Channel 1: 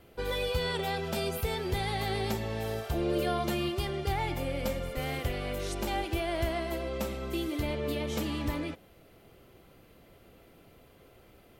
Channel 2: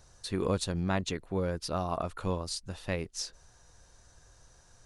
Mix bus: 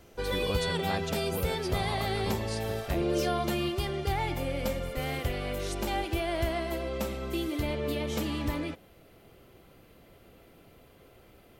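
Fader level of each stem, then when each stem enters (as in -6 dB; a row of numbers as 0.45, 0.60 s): +1.0, -5.0 dB; 0.00, 0.00 s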